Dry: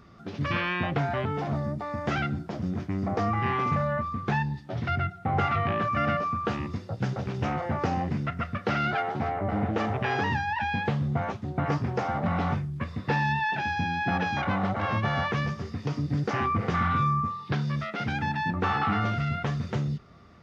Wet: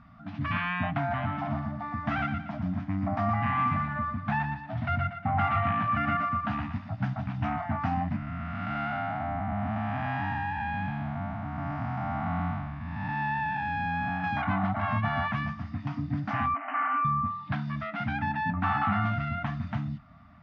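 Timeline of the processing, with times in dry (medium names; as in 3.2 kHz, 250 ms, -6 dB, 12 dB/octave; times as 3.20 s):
0.99–7.06 s: thinning echo 118 ms, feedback 42%, level -6.5 dB
8.16–14.24 s: spectral blur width 344 ms
16.54–17.05 s: brick-wall FIR band-pass 260–3100 Hz
whole clip: FFT band-reject 300–600 Hz; low-pass 2.4 kHz 12 dB/octave; dynamic bell 150 Hz, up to -7 dB, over -43 dBFS, Q 7.2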